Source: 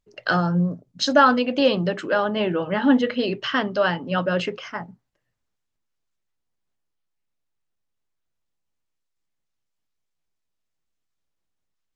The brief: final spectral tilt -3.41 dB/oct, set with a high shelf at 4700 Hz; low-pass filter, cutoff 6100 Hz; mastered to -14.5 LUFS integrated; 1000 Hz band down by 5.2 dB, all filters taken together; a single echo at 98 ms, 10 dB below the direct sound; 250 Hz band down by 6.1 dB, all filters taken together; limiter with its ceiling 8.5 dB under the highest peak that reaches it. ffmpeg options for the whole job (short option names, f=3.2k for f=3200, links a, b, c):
-af "lowpass=6.1k,equalizer=f=250:t=o:g=-7.5,equalizer=f=1k:t=o:g=-7.5,highshelf=f=4.7k:g=6,alimiter=limit=-15dB:level=0:latency=1,aecho=1:1:98:0.316,volume=12dB"